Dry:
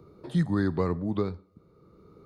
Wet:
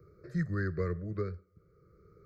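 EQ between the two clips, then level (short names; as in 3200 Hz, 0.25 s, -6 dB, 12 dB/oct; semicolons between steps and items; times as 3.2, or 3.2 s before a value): fixed phaser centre 940 Hz, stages 6; fixed phaser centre 2900 Hz, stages 6; 0.0 dB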